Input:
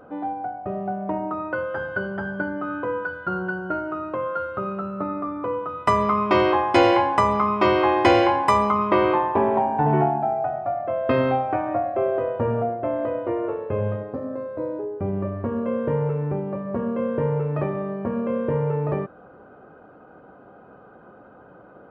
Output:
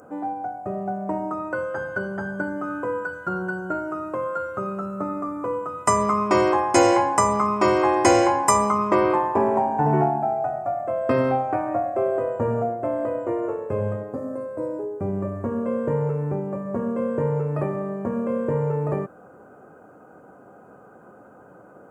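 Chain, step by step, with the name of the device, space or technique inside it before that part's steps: budget condenser microphone (high-pass 83 Hz; resonant high shelf 5.1 kHz +13.5 dB, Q 3)

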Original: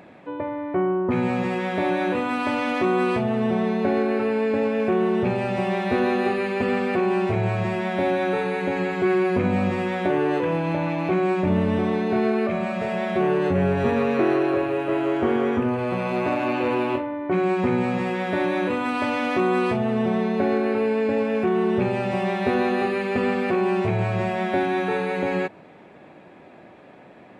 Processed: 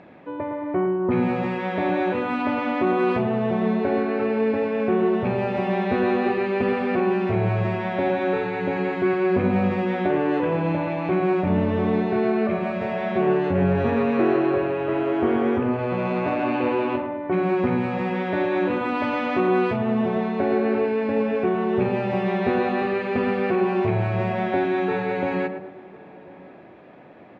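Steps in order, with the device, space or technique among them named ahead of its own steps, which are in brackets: 2.42–2.87 s: treble shelf 4 kHz -7 dB; tape echo 110 ms, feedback 46%, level -6.5 dB, low-pass 1.3 kHz; shout across a valley (distance through air 150 m; echo from a far wall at 180 m, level -22 dB)

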